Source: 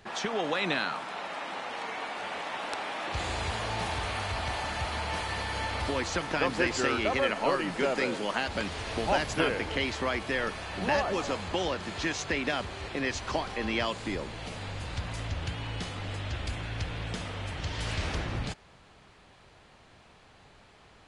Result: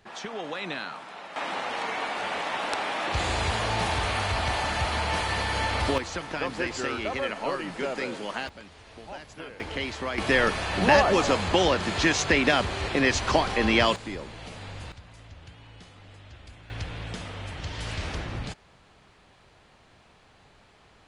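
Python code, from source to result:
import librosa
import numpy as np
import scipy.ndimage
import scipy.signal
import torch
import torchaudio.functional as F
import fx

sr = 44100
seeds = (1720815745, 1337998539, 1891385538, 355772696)

y = fx.gain(x, sr, db=fx.steps((0.0, -4.5), (1.36, 5.5), (5.98, -2.5), (8.49, -14.0), (9.6, -1.5), (10.18, 8.5), (13.96, -2.0), (14.92, -13.0), (16.7, -0.5)))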